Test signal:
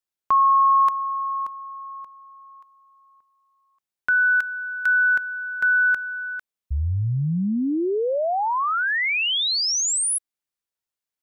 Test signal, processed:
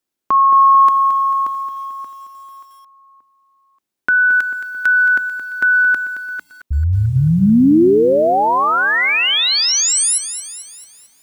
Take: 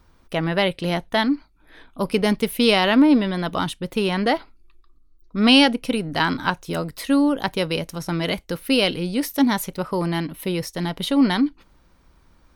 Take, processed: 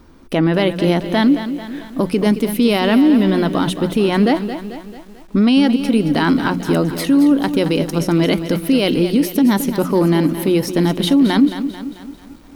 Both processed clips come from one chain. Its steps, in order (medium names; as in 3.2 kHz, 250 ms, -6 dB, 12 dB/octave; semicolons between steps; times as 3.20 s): peaking EQ 280 Hz +11.5 dB 1.3 oct; hum notches 60/120/180 Hz; in parallel at +2.5 dB: compression 12:1, threshold -20 dBFS; on the sum: peak limiter -7 dBFS; bit-crushed delay 221 ms, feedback 55%, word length 7-bit, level -10.5 dB